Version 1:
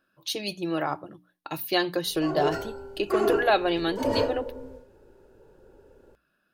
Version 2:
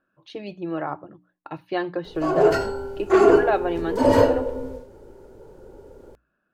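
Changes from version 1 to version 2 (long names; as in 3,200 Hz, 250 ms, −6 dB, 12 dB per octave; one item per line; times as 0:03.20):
speech: add low-pass filter 1,700 Hz 12 dB per octave
background +9.5 dB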